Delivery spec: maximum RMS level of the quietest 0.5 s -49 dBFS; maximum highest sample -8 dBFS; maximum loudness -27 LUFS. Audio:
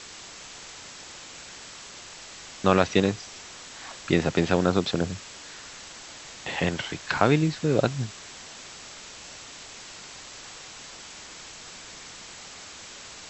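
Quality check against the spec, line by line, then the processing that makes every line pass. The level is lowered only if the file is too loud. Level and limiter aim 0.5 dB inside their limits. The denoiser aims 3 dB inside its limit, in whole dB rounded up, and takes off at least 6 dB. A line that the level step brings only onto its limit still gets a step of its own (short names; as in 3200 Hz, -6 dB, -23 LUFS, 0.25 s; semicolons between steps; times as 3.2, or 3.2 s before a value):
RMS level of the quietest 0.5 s -44 dBFS: fail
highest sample -3.0 dBFS: fail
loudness -25.5 LUFS: fail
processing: denoiser 6 dB, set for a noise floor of -44 dBFS; gain -2 dB; limiter -8.5 dBFS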